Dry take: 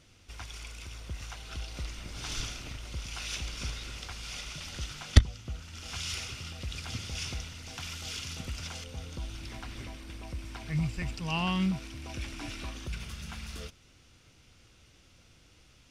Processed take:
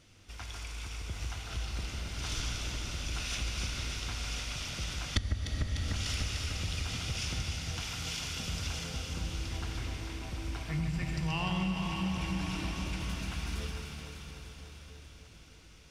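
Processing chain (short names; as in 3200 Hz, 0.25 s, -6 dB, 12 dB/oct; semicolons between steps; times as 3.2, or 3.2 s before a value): on a send: echo with dull and thin repeats by turns 0.149 s, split 2000 Hz, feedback 82%, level -5 dB; on the sum: plate-style reverb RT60 4.3 s, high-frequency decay 0.95×, DRR 3 dB; compressor 4:1, threshold -28 dBFS, peak gain reduction 15.5 dB; gain -1 dB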